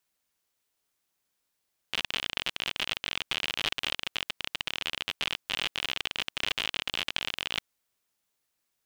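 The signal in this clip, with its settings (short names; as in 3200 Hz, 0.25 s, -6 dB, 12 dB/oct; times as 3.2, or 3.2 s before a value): random clicks 51/s -13 dBFS 5.70 s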